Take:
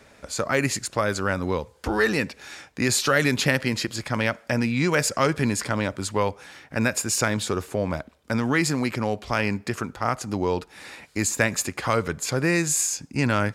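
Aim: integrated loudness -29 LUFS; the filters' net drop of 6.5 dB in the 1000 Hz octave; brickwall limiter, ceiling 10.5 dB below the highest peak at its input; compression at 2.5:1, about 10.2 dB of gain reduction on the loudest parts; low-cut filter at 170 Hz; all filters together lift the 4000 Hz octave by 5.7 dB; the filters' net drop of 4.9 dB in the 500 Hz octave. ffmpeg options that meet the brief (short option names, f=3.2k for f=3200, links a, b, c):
-af "highpass=170,equalizer=f=500:t=o:g=-4,equalizer=f=1k:t=o:g=-8.5,equalizer=f=4k:t=o:g=7.5,acompressor=threshold=-33dB:ratio=2.5,volume=7.5dB,alimiter=limit=-17.5dB:level=0:latency=1"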